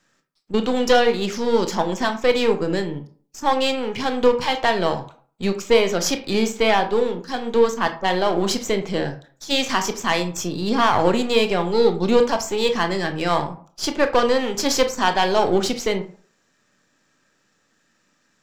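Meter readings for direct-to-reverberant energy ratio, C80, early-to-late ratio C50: 7.0 dB, 16.5 dB, 12.0 dB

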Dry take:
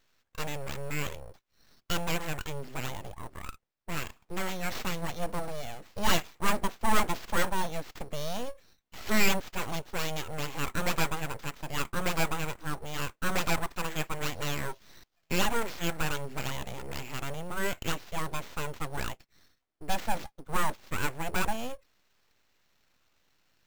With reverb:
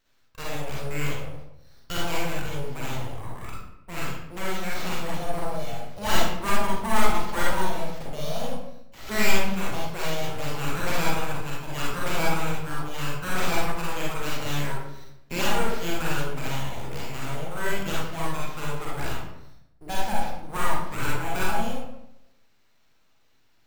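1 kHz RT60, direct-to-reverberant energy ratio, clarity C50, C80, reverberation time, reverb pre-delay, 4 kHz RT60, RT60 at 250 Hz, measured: 0.75 s, -5.5 dB, -1.5 dB, 3.5 dB, 0.80 s, 35 ms, 0.55 s, 0.95 s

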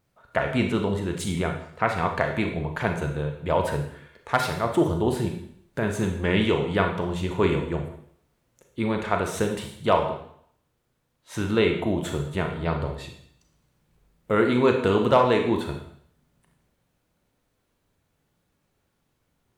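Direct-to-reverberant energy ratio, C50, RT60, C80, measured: 3.5 dB, 6.5 dB, 0.65 s, 9.5 dB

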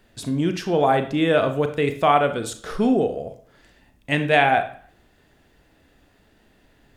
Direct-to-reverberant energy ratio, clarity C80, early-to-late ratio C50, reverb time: 7.5 dB, 16.0 dB, 11.5 dB, 0.50 s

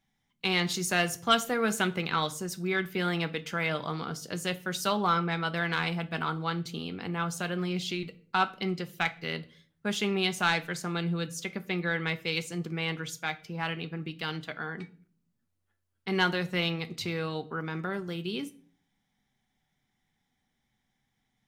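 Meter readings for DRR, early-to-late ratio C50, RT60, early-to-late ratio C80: 10.5 dB, 18.5 dB, 0.45 s, 22.5 dB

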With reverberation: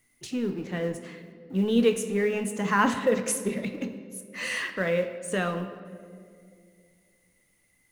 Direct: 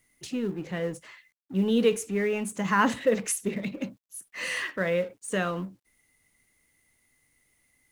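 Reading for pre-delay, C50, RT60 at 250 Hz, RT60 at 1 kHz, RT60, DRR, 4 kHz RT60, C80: 3 ms, 10.0 dB, 2.8 s, 1.8 s, 2.2 s, 8.0 dB, 1.4 s, 11.0 dB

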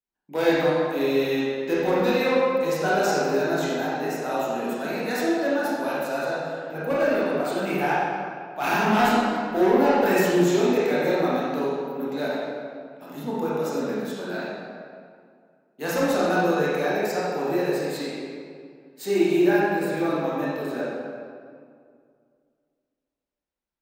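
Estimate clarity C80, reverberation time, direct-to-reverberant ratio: -1.0 dB, 2.1 s, -8.5 dB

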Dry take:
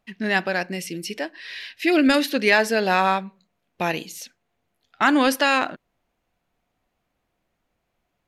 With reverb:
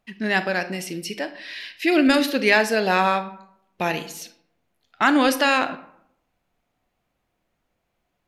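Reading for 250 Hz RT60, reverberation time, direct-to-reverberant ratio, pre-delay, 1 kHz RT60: 0.80 s, 0.75 s, 11.0 dB, 31 ms, 0.70 s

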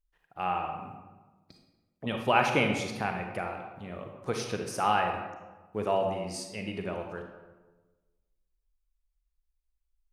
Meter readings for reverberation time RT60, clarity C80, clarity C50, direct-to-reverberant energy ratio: 1.3 s, 7.0 dB, 4.0 dB, 3.0 dB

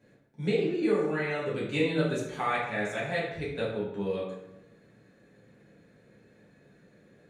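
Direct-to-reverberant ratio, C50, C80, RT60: -7.5 dB, 2.5 dB, 5.5 dB, 0.90 s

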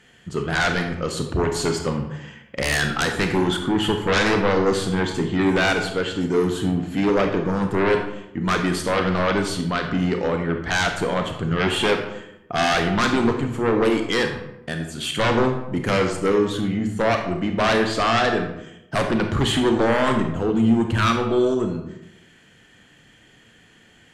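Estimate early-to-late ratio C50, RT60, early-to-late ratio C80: 6.5 dB, 0.85 s, 9.0 dB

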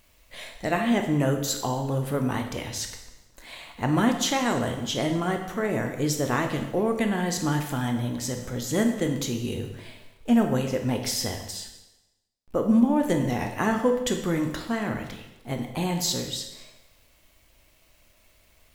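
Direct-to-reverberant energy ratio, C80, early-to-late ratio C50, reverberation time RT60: 4.5 dB, 9.5 dB, 7.0 dB, 1.0 s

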